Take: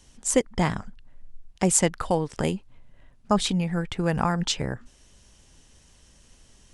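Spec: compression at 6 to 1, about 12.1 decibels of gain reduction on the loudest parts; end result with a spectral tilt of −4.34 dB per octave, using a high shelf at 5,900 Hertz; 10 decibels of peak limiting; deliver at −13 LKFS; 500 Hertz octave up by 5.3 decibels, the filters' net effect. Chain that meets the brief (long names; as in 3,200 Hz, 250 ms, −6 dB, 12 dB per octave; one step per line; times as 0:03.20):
parametric band 500 Hz +6 dB
high-shelf EQ 5,900 Hz +8 dB
downward compressor 6 to 1, threshold −24 dBFS
level +19.5 dB
brickwall limiter 0 dBFS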